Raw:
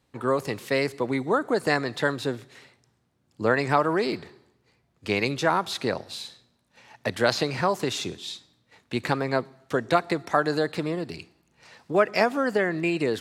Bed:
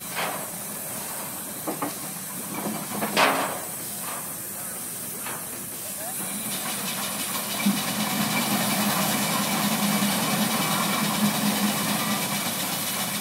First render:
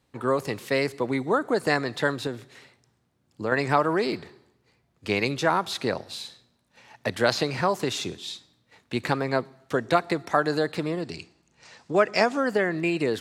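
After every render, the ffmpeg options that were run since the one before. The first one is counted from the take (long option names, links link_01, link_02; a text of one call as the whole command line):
ffmpeg -i in.wav -filter_complex "[0:a]asettb=1/sr,asplit=3[link_01][link_02][link_03];[link_01]atrim=end=2.274[link_04];[link_02]atrim=start=2.27:end=3.52,asetpts=PTS-STARTPTS,afade=type=in:duration=0.004:curve=qsin,afade=type=out:start_time=1.246:duration=0.004:curve=qsin,acompressor=threshold=-32dB:ratio=1.5:attack=3.2:release=140:knee=1:detection=peak[link_05];[link_03]atrim=start=3.516[link_06];[link_04][link_05]acrossfade=duration=0.004:curve1=hsin:curve2=qsin[link_07];[link_07][link_06]acrossfade=duration=0.004:curve1=qsin:curve2=hsin,asettb=1/sr,asplit=3[link_08][link_09][link_10];[link_08]atrim=end=11.024[link_11];[link_09]atrim=start=11.02:end=12.4,asetpts=PTS-STARTPTS,afade=type=in:duration=0.004:curve=qsin,afade=type=out:start_time=1.376:duration=0.004:curve=qsin,lowpass=frequency=7300:width_type=q:width=1.8[link_12];[link_10]atrim=start=12.396[link_13];[link_11][link_12]acrossfade=duration=0.004:curve1=hsin:curve2=qsin[link_14];[link_14][link_13]acrossfade=duration=0.004:curve1=qsin:curve2=hsin" out.wav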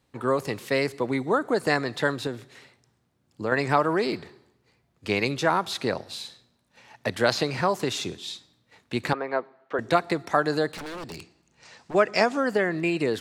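ffmpeg -i in.wav -filter_complex "[0:a]asettb=1/sr,asplit=3[link_01][link_02][link_03];[link_01]atrim=end=9.134[link_04];[link_02]atrim=start=9.13:end=9.79,asetpts=PTS-STARTPTS,afade=type=in:duration=0.004:curve=qsin,afade=type=out:start_time=0.656:duration=0.004:curve=qsin,highpass=410,lowpass=2000[link_05];[link_03]atrim=start=9.786[link_06];[link_04][link_05]acrossfade=duration=0.004:curve1=hsin:curve2=qsin[link_07];[link_07][link_06]acrossfade=duration=0.004:curve1=qsin:curve2=hsin,asplit=3[link_08][link_09][link_10];[link_08]afade=type=out:start_time=10.71:duration=0.02[link_11];[link_09]aeval=exprs='0.0266*(abs(mod(val(0)/0.0266+3,4)-2)-1)':channel_layout=same,afade=type=in:start_time=10.71:duration=0.02,afade=type=out:start_time=11.93:duration=0.02[link_12];[link_10]afade=type=in:start_time=11.93:duration=0.02[link_13];[link_11][link_12][link_13]amix=inputs=3:normalize=0" out.wav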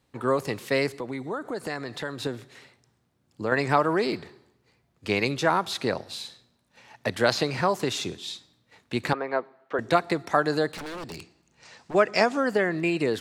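ffmpeg -i in.wav -filter_complex "[0:a]asettb=1/sr,asplit=3[link_01][link_02][link_03];[link_01]atrim=end=1.004[link_04];[link_02]atrim=start=1:end=2.2,asetpts=PTS-STARTPTS,afade=type=in:duration=0.004:curve=qsin,afade=type=out:start_time=1.196:duration=0.004:curve=qsin,acompressor=threshold=-34dB:ratio=2:attack=3.2:release=140:knee=1:detection=peak[link_05];[link_03]atrim=start=2.196[link_06];[link_04][link_05]acrossfade=duration=0.004:curve1=hsin:curve2=qsin[link_07];[link_07][link_06]acrossfade=duration=0.004:curve1=qsin:curve2=hsin" out.wav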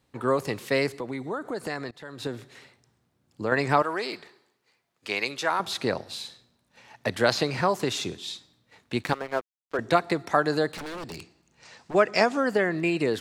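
ffmpeg -i in.wav -filter_complex "[0:a]asettb=1/sr,asplit=3[link_01][link_02][link_03];[link_01]atrim=end=3.824[link_04];[link_02]atrim=start=3.82:end=5.6,asetpts=PTS-STARTPTS,afade=type=in:duration=0.004:curve=qsin,afade=type=out:start_time=1.776:duration=0.004:curve=qsin,highpass=frequency=870:poles=1[link_05];[link_03]atrim=start=5.596[link_06];[link_04][link_05]acrossfade=duration=0.004:curve1=hsin:curve2=qsin[link_07];[link_07][link_06]acrossfade=duration=0.004:curve1=qsin:curve2=hsin,asplit=3[link_08][link_09][link_10];[link_08]afade=type=out:start_time=9.02:duration=0.02[link_11];[link_09]aeval=exprs='sgn(val(0))*max(abs(val(0))-0.015,0)':channel_layout=same,afade=type=in:start_time=9.02:duration=0.02,afade=type=out:start_time=9.76:duration=0.02[link_12];[link_10]afade=type=in:start_time=9.76:duration=0.02[link_13];[link_11][link_12][link_13]amix=inputs=3:normalize=0,asplit=2[link_14][link_15];[link_14]atrim=end=1.91,asetpts=PTS-STARTPTS,afade=type=out:start_time=1.906:duration=0.004:curve=hsin:silence=0.0794328[link_16];[link_15]atrim=start=1.91,asetpts=PTS-STARTPTS,afade=type=in:duration=0.46:silence=0.0794328[link_17];[link_16][link_17]concat=n=2:v=0:a=1" out.wav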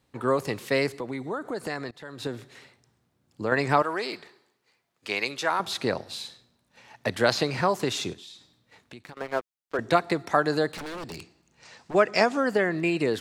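ffmpeg -i in.wav -filter_complex "[0:a]asettb=1/sr,asplit=3[link_01][link_02][link_03];[link_01]atrim=end=8.134[link_04];[link_02]atrim=start=8.13:end=9.17,asetpts=PTS-STARTPTS,afade=type=in:duration=0.004:curve=qsin,afade=type=out:start_time=1.036:duration=0.004:curve=qsin,acompressor=threshold=-44dB:ratio=4:attack=3.2:release=140:knee=1:detection=peak[link_05];[link_03]atrim=start=9.166[link_06];[link_04][link_05]acrossfade=duration=0.004:curve1=hsin:curve2=qsin[link_07];[link_07][link_06]acrossfade=duration=0.004:curve1=qsin:curve2=hsin" out.wav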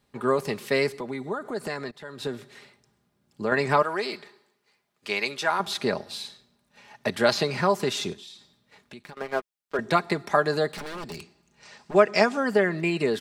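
ffmpeg -i in.wav -af "bandreject=frequency=6800:width=23,aecho=1:1:4.9:0.47" out.wav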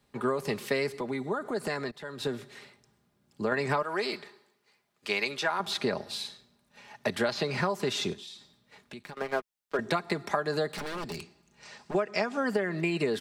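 ffmpeg -i in.wav -filter_complex "[0:a]acrossover=split=130|5400[link_01][link_02][link_03];[link_03]alimiter=level_in=9dB:limit=-24dB:level=0:latency=1:release=371,volume=-9dB[link_04];[link_01][link_02][link_04]amix=inputs=3:normalize=0,acompressor=threshold=-24dB:ratio=12" out.wav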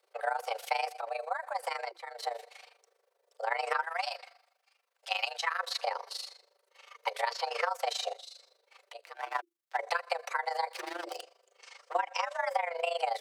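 ffmpeg -i in.wav -af "afreqshift=340,tremolo=f=25:d=0.824" out.wav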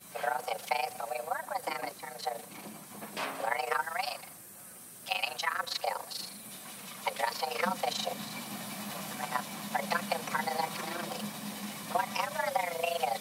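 ffmpeg -i in.wav -i bed.wav -filter_complex "[1:a]volume=-16.5dB[link_01];[0:a][link_01]amix=inputs=2:normalize=0" out.wav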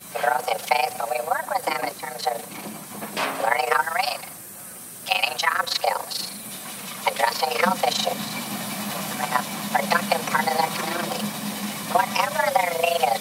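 ffmpeg -i in.wav -af "volume=10.5dB" out.wav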